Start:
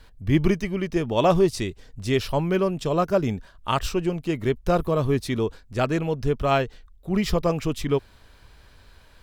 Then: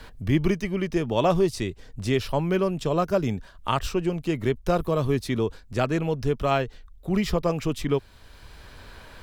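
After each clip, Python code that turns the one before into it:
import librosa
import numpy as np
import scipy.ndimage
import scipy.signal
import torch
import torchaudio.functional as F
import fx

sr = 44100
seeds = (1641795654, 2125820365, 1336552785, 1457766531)

y = fx.band_squash(x, sr, depth_pct=40)
y = y * 10.0 ** (-1.5 / 20.0)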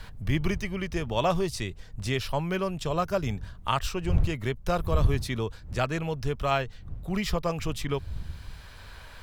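y = fx.dmg_wind(x, sr, seeds[0], corner_hz=92.0, level_db=-33.0)
y = fx.peak_eq(y, sr, hz=310.0, db=-8.5, octaves=1.8)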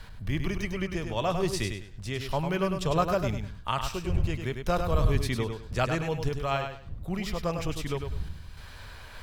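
y = fx.tremolo_random(x, sr, seeds[1], hz=3.5, depth_pct=55)
y = fx.echo_feedback(y, sr, ms=101, feedback_pct=25, wet_db=-6.5)
y = y * 10.0 ** (1.5 / 20.0)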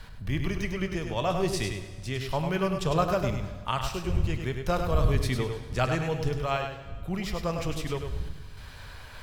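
y = fx.rev_plate(x, sr, seeds[2], rt60_s=1.6, hf_ratio=0.95, predelay_ms=0, drr_db=10.0)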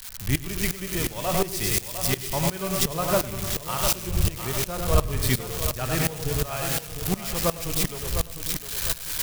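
y = x + 0.5 * 10.0 ** (-18.5 / 20.0) * np.diff(np.sign(x), prepend=np.sign(x[:1]))
y = fx.echo_feedback(y, sr, ms=704, feedback_pct=43, wet_db=-8.5)
y = fx.tremolo_decay(y, sr, direction='swelling', hz=2.8, depth_db=18)
y = y * 10.0 ** (7.0 / 20.0)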